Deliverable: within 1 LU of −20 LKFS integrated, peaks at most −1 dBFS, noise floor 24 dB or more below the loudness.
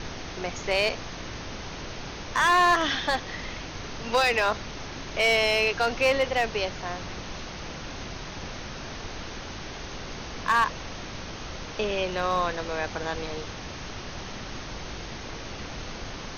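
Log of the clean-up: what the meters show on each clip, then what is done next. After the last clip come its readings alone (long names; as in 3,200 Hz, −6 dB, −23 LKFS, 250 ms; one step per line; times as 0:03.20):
share of clipped samples 0.5%; peaks flattened at −15.5 dBFS; background noise floor −38 dBFS; target noise floor −53 dBFS; integrated loudness −28.5 LKFS; sample peak −15.5 dBFS; target loudness −20.0 LKFS
→ clipped peaks rebuilt −15.5 dBFS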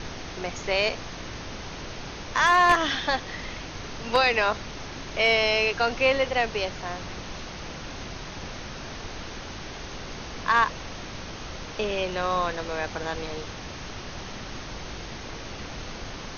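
share of clipped samples 0.0%; background noise floor −38 dBFS; target noise floor −52 dBFS
→ noise reduction from a noise print 14 dB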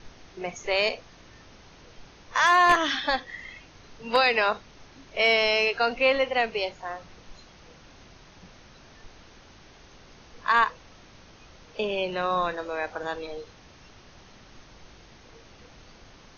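background noise floor −52 dBFS; integrated loudness −24.5 LKFS; sample peak −6.5 dBFS; target loudness −20.0 LKFS
→ level +4.5 dB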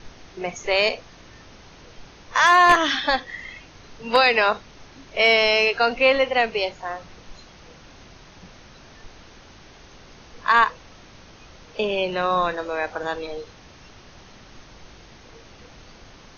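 integrated loudness −20.0 LKFS; sample peak −2.0 dBFS; background noise floor −48 dBFS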